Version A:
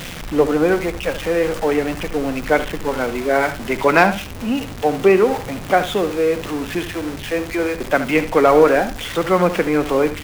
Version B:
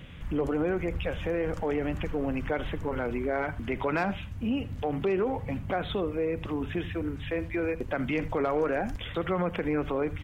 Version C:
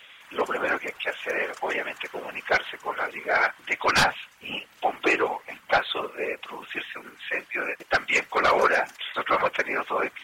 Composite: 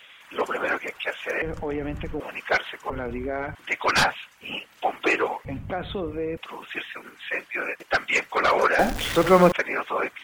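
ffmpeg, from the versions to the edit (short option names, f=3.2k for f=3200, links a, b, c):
-filter_complex "[1:a]asplit=3[a][b][c];[2:a]asplit=5[d][e][f][g][h];[d]atrim=end=1.422[i];[a]atrim=start=1.418:end=2.202[j];[e]atrim=start=2.198:end=2.902[k];[b]atrim=start=2.898:end=3.552[l];[f]atrim=start=3.548:end=5.452[m];[c]atrim=start=5.448:end=6.372[n];[g]atrim=start=6.368:end=8.792[o];[0:a]atrim=start=8.788:end=9.522[p];[h]atrim=start=9.518[q];[i][j]acrossfade=d=0.004:c1=hsin:c2=hsin[r];[r][k]acrossfade=d=0.004:c1=hsin:c2=hsin[s];[s][l]acrossfade=d=0.004:c1=hsin:c2=hsin[t];[t][m]acrossfade=d=0.004:c1=hsin:c2=hsin[u];[u][n]acrossfade=d=0.004:c1=hsin:c2=hsin[v];[v][o]acrossfade=d=0.004:c1=hsin:c2=hsin[w];[w][p]acrossfade=d=0.004:c1=hsin:c2=hsin[x];[x][q]acrossfade=d=0.004:c1=hsin:c2=hsin"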